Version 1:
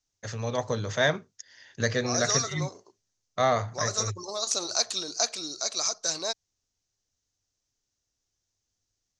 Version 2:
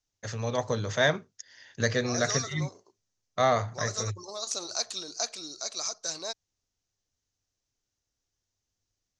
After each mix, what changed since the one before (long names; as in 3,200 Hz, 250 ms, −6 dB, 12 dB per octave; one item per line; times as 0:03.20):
second voice −5.0 dB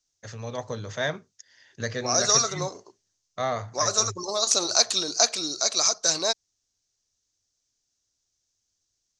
first voice −4.0 dB
second voice +11.0 dB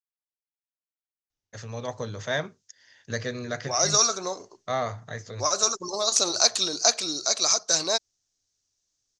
first voice: entry +1.30 s
second voice: entry +1.65 s